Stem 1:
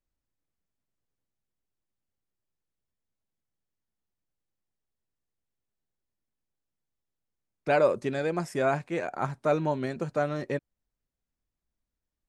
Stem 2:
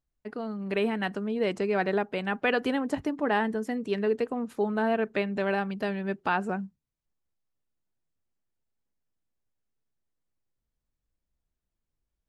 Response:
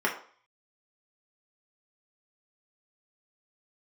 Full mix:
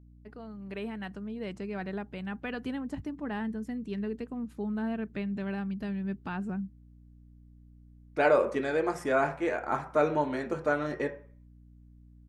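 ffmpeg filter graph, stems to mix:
-filter_complex "[0:a]adelay=500,volume=-4.5dB,asplit=2[a][b];[b]volume=-10dB[c];[1:a]deesser=0.9,asubboost=boost=7:cutoff=200,volume=-10dB[d];[2:a]atrim=start_sample=2205[e];[c][e]afir=irnorm=-1:irlink=0[f];[a][d][f]amix=inputs=3:normalize=0,aeval=exprs='val(0)+0.00224*(sin(2*PI*60*n/s)+sin(2*PI*2*60*n/s)/2+sin(2*PI*3*60*n/s)/3+sin(2*PI*4*60*n/s)/4+sin(2*PI*5*60*n/s)/5)':c=same"

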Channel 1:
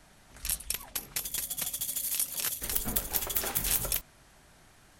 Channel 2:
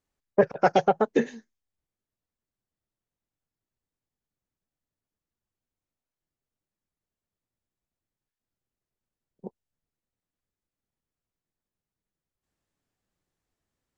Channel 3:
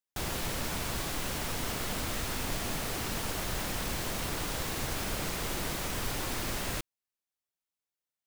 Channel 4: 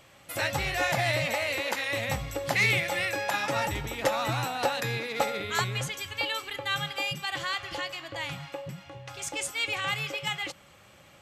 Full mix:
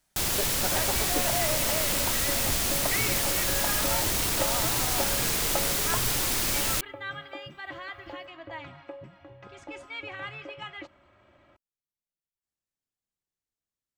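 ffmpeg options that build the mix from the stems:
-filter_complex "[0:a]volume=-20dB[a];[1:a]volume=-15dB[b];[2:a]volume=2dB[c];[3:a]lowpass=1.3k,aecho=1:1:3.1:0.65,adelay=350,volume=-4dB[d];[a][b][c][d]amix=inputs=4:normalize=0,highshelf=f=3k:g=10.5"

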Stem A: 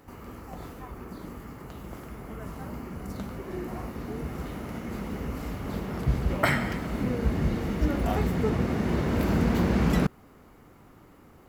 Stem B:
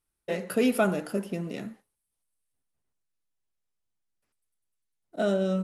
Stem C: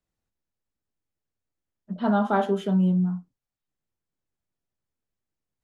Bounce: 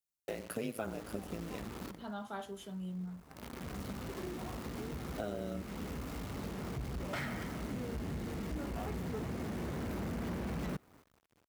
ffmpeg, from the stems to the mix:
-filter_complex "[0:a]agate=range=-18dB:threshold=-50dB:ratio=16:detection=peak,highshelf=f=6.6k:g=-4.5,asoftclip=type=tanh:threshold=-23.5dB,adelay=700,volume=-2dB[a];[1:a]tremolo=f=110:d=0.889,volume=1dB[b];[2:a]highshelf=f=2.1k:g=11,crystalizer=i=2:c=0,volume=-13dB,afade=t=in:st=2.8:d=0.77:silence=0.375837,asplit=2[c][d];[d]apad=whole_len=537477[e];[a][e]sidechaincompress=threshold=-58dB:ratio=5:attack=31:release=532[f];[f][b]amix=inputs=2:normalize=0,acrusher=bits=8:dc=4:mix=0:aa=0.000001,acompressor=threshold=-39dB:ratio=3,volume=0dB[g];[c][g]amix=inputs=2:normalize=0,highpass=42"

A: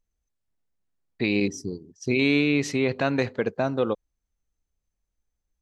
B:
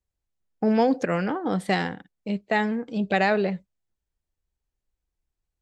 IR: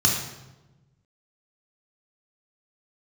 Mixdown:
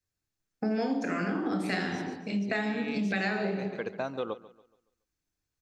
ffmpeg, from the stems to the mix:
-filter_complex "[0:a]adelay=400,volume=-4dB,asplit=2[a][b];[b]volume=-18dB[c];[1:a]equalizer=f=290:w=2.6:g=14,volume=-0.5dB,asplit=3[d][e][f];[e]volume=-13dB[g];[f]apad=whole_len=265428[h];[a][h]sidechaincompress=threshold=-29dB:ratio=8:attack=16:release=421[i];[2:a]atrim=start_sample=2205[j];[g][j]afir=irnorm=-1:irlink=0[k];[c]aecho=0:1:141|282|423|564|705:1|0.37|0.137|0.0507|0.0187[l];[i][d][k][l]amix=inputs=4:normalize=0,lowshelf=f=330:g=-11.5,acompressor=threshold=-27dB:ratio=6"

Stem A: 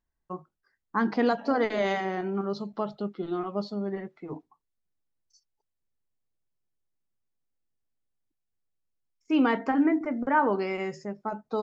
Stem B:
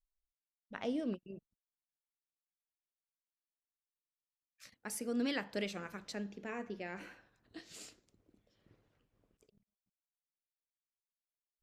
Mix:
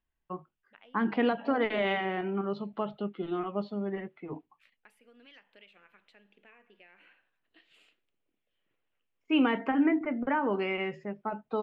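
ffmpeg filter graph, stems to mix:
-filter_complex "[0:a]acrossover=split=440[a][b];[b]acompressor=threshold=-26dB:ratio=6[c];[a][c]amix=inputs=2:normalize=0,volume=-2dB[d];[1:a]highpass=f=740:p=1,acompressor=threshold=-48dB:ratio=6,volume=-8dB[e];[d][e]amix=inputs=2:normalize=0,highshelf=f=4.1k:t=q:w=3:g=-12.5"

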